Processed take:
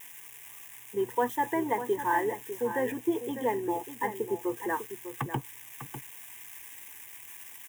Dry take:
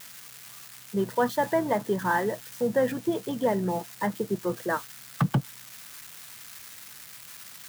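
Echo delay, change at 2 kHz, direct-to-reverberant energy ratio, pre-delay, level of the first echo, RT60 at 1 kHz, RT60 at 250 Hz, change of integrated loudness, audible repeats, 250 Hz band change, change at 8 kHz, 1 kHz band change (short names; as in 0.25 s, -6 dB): 0.599 s, -3.0 dB, none, none, -10.5 dB, none, none, -4.0 dB, 1, -4.5 dB, -3.0 dB, -0.5 dB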